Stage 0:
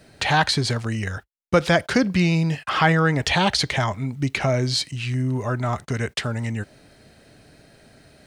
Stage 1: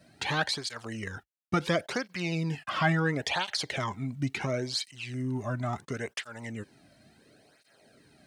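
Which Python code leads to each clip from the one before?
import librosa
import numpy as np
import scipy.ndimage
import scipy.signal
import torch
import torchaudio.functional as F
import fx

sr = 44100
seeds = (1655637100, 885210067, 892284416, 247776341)

y = fx.flanger_cancel(x, sr, hz=0.72, depth_ms=2.5)
y = y * librosa.db_to_amplitude(-5.5)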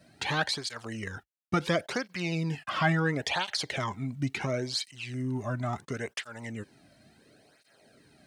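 y = x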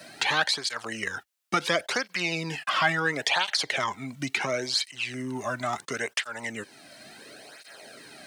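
y = fx.highpass(x, sr, hz=800.0, slope=6)
y = fx.band_squash(y, sr, depth_pct=40)
y = y * librosa.db_to_amplitude(7.5)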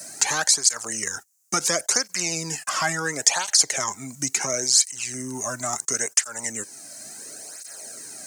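y = fx.high_shelf_res(x, sr, hz=4800.0, db=13.0, q=3.0)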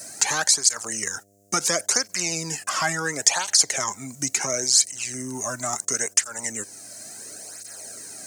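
y = fx.dmg_buzz(x, sr, base_hz=100.0, harmonics=7, level_db=-61.0, tilt_db=-1, odd_only=False)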